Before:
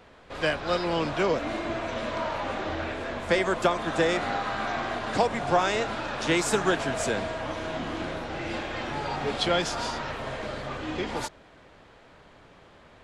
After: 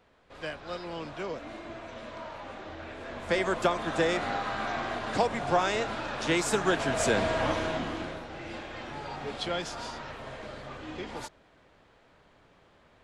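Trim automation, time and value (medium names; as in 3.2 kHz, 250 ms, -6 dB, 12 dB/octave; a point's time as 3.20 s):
2.78 s -11 dB
3.44 s -2.5 dB
6.63 s -2.5 dB
7.45 s +5.5 dB
8.28 s -7.5 dB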